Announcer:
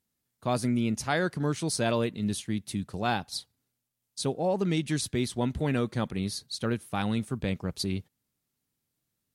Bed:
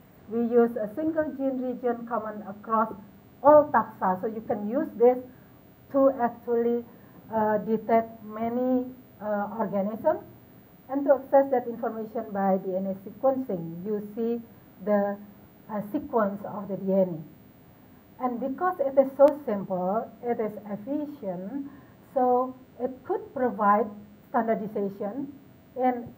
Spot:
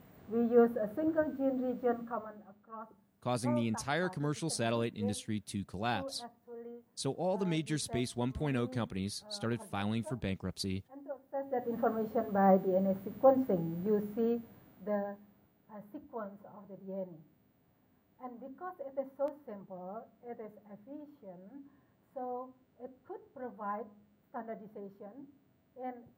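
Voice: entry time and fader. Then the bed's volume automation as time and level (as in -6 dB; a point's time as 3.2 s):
2.80 s, -6.0 dB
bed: 1.97 s -4.5 dB
2.68 s -22.5 dB
11.3 s -22.5 dB
11.74 s -1 dB
14.03 s -1 dB
15.58 s -17.5 dB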